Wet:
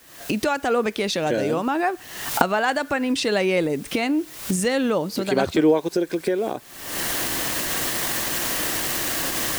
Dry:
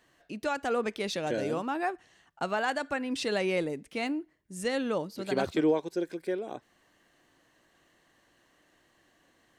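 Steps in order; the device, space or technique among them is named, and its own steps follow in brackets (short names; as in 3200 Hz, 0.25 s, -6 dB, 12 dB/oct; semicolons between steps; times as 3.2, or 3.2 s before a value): cheap recorder with automatic gain (white noise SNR 29 dB; recorder AGC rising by 61 dB/s); gain +8 dB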